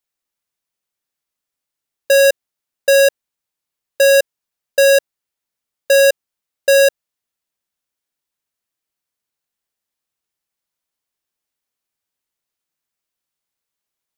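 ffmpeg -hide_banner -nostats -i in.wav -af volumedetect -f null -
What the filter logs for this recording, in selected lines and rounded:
mean_volume: -20.2 dB
max_volume: -9.5 dB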